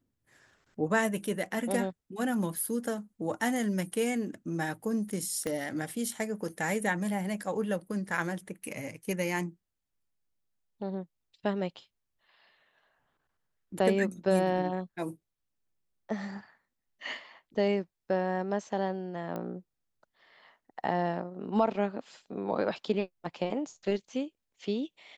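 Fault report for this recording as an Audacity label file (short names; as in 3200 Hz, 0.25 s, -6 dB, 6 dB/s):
5.470000	5.470000	pop -20 dBFS
19.360000	19.360000	pop -24 dBFS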